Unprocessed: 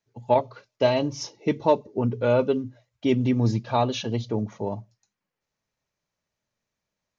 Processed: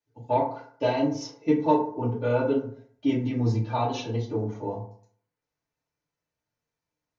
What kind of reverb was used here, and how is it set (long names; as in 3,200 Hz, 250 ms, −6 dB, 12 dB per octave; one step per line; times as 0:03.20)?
feedback delay network reverb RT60 0.56 s, low-frequency decay 0.95×, high-frequency decay 0.45×, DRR −6.5 dB
level −10.5 dB